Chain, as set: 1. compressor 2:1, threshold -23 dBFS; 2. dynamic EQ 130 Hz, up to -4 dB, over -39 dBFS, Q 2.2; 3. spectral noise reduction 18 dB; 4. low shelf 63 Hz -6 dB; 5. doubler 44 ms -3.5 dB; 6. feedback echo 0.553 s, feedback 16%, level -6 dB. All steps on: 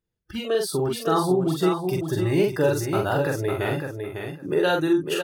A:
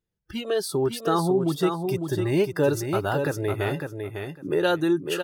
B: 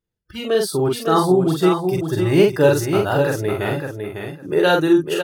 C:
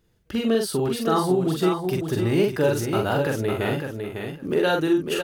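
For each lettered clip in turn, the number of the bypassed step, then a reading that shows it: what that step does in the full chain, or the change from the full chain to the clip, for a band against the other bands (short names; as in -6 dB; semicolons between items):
5, loudness change -1.5 LU; 1, mean gain reduction 4.0 dB; 3, momentary loudness spread change -3 LU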